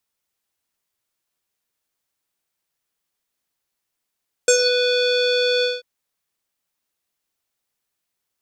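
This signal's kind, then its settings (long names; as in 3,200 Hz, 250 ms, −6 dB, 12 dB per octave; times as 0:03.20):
subtractive voice square B4 12 dB per octave, low-pass 4,000 Hz, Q 12, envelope 1 octave, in 0.22 s, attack 2.9 ms, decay 0.09 s, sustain −7 dB, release 0.19 s, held 1.15 s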